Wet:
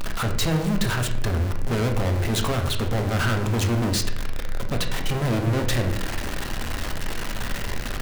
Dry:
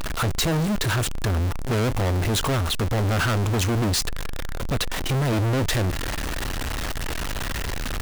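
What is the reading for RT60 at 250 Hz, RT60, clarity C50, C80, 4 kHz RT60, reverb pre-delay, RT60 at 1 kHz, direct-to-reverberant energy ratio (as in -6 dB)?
1.1 s, 0.80 s, 8.5 dB, 11.5 dB, 0.55 s, 4 ms, 0.65 s, 4.0 dB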